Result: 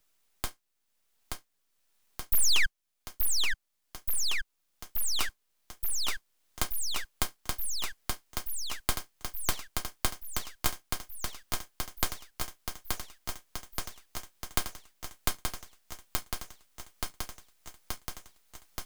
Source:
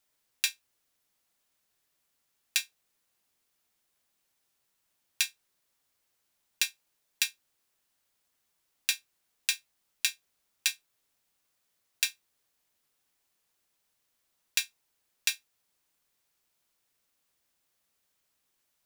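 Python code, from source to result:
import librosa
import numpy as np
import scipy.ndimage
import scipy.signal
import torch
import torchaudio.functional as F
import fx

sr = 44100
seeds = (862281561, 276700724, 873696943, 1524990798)

y = fx.spec_paint(x, sr, seeds[0], shape='fall', start_s=2.32, length_s=0.34, low_hz=740.0, high_hz=8700.0, level_db=-11.0)
y = fx.echo_thinned(y, sr, ms=877, feedback_pct=71, hz=550.0, wet_db=-5.5)
y = fx.rider(y, sr, range_db=4, speed_s=2.0)
y = np.abs(y)
y = fx.band_squash(y, sr, depth_pct=40)
y = F.gain(torch.from_numpy(y), -1.5).numpy()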